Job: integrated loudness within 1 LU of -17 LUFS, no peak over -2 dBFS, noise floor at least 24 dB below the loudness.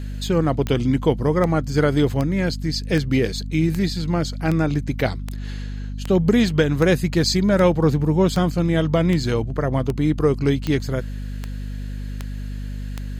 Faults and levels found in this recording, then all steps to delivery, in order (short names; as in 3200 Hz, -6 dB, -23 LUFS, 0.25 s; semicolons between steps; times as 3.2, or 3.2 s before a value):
clicks 17; hum 50 Hz; harmonics up to 250 Hz; hum level -27 dBFS; loudness -20.5 LUFS; peak -4.0 dBFS; loudness target -17.0 LUFS
-> de-click; de-hum 50 Hz, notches 5; gain +3.5 dB; limiter -2 dBFS